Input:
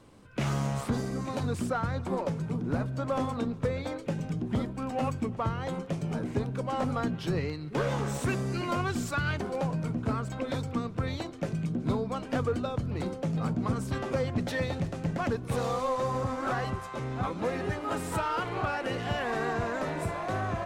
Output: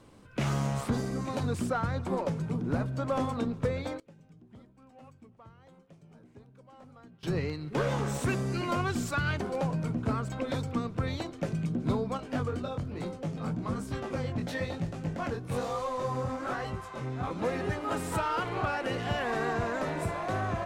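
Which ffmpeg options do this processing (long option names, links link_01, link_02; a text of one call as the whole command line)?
ffmpeg -i in.wav -filter_complex "[0:a]asettb=1/sr,asplit=3[link_01][link_02][link_03];[link_01]atrim=end=12.174[link_04];[link_02]atrim=start=12.17:end=17.31,asetpts=PTS-STARTPTS,afade=type=in:duration=0.004:curve=qsin,afade=type=out:start_time=5.136:duration=0.004:curve=qsin,flanger=delay=17.5:depth=6.1:speed=1.1[link_05];[link_03]atrim=start=17.306[link_06];[link_04][link_05]acrossfade=duration=0.004:curve1=hsin:curve2=qsin[link_07];[link_07][link_06]acrossfade=duration=0.004:curve1=qsin:curve2=hsin,asplit=3[link_08][link_09][link_10];[link_08]atrim=end=4,asetpts=PTS-STARTPTS,afade=type=out:start_time=3.62:duration=0.38:curve=log:silence=0.0707946[link_11];[link_09]atrim=start=4:end=7.23,asetpts=PTS-STARTPTS,volume=-23dB[link_12];[link_10]atrim=start=7.23,asetpts=PTS-STARTPTS,afade=type=in:duration=0.38:curve=log:silence=0.0707946[link_13];[link_11][link_12][link_13]concat=n=3:v=0:a=1" out.wav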